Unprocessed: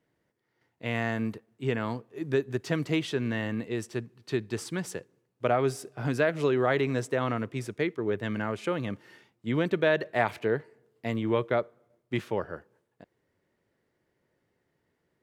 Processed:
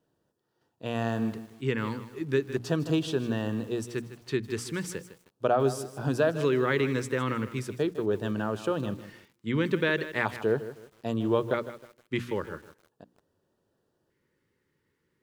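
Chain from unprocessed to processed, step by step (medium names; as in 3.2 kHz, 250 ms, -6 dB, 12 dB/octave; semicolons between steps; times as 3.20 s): LFO notch square 0.39 Hz 690–2100 Hz; hum notches 60/120/180/240/300 Hz; bit-crushed delay 156 ms, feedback 35%, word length 8-bit, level -13 dB; trim +1.5 dB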